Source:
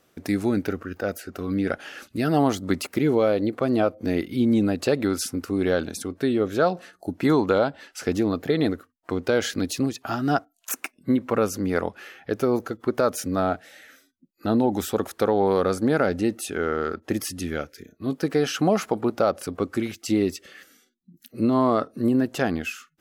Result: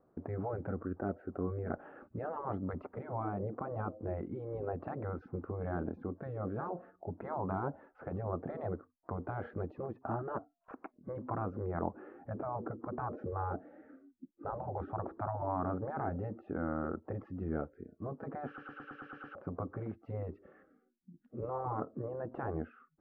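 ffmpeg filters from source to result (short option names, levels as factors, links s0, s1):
-filter_complex "[0:a]asettb=1/sr,asplit=3[s0][s1][s2];[s0]atrim=end=11.944[s3];[s1]atrim=start=11.94:end=15.42,asetpts=PTS-STARTPTS,afade=t=in:d=0.004:c=qsin,afade=t=out:st=3.476:d=0.004:c=qsin,equalizer=f=290:w=1.5:g=14[s4];[s2]atrim=start=15.416[s5];[s3][s4]acrossfade=d=0.004:c1=hsin:c2=qsin[s6];[s6][s5]acrossfade=d=0.004:c1=qsin:c2=hsin,asplit=9[s7][s8][s9][s10][s11][s12][s13][s14][s15];[s7]atrim=end=18.582[s16];[s8]atrim=start=18.468:end=18.582[s17];[s9]atrim=start=18.468:end=18.582[s18];[s10]atrim=start=18.468:end=18.582[s19];[s11]atrim=start=18.468:end=18.582[s20];[s12]atrim=start=18.468:end=18.582[s21];[s13]atrim=start=18.468:end=18.582[s22];[s14]atrim=start=18.468:end=18.582[s23];[s15]atrim=start=19.348[s24];[s16][s17]acrossfade=d=0.004:c1=hsin:c2=hsin[s25];[s25][s18]acrossfade=d=0.004:c1=hsin:c2=hsin[s26];[s26][s19]acrossfade=d=0.004:c1=hsin:c2=hsin[s27];[s27][s20]acrossfade=d=0.004:c1=hsin:c2=hsin[s28];[s28][s21]acrossfade=d=0.004:c1=hsin:c2=hsin[s29];[s29][s22]acrossfade=d=0.004:c1=hsin:c2=hsin[s30];[s30][s23]acrossfade=d=0.004:c1=hsin:c2=hsin[s31];[s31][s24]acrossfade=d=0.004:c1=hsin:c2=hsin,afftfilt=real='re*lt(hypot(re,im),0.251)':imag='im*lt(hypot(re,im),0.251)':win_size=1024:overlap=0.75,lowpass=f=1100:w=0.5412,lowpass=f=1100:w=1.3066,volume=0.631"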